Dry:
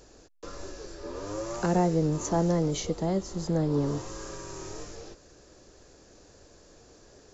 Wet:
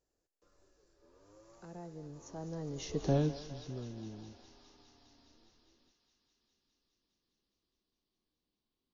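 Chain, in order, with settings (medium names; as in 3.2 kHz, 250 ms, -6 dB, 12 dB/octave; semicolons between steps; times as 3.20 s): gliding tape speed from 94% -> 70%; Doppler pass-by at 3.12 s, 30 m/s, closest 2.8 m; thinning echo 205 ms, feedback 83%, high-pass 570 Hz, level -12 dB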